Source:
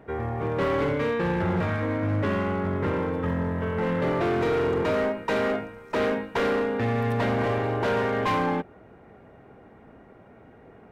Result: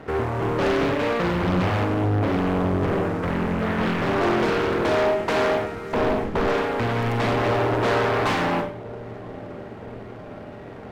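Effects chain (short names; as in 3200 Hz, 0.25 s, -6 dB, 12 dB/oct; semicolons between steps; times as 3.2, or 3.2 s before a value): 1.84–3.23 LPF 1300 Hz 6 dB/oct; 5.93–6.48 tilt -3.5 dB/oct; in parallel at 0 dB: compressor, threshold -38 dBFS, peak gain reduction 19 dB; on the sum: sample leveller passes 3; dark delay 0.97 s, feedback 67%, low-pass 620 Hz, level -16.5 dB; Schroeder reverb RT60 0.44 s, combs from 29 ms, DRR 3.5 dB; Doppler distortion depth 0.94 ms; gain -7 dB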